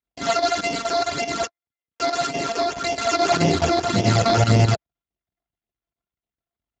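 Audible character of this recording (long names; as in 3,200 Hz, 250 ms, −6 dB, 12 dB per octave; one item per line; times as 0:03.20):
a buzz of ramps at a fixed pitch in blocks of 64 samples
phaser sweep stages 12, 1.8 Hz, lowest notch 150–1,400 Hz
chopped level 4.7 Hz, depth 65%, duty 85%
Speex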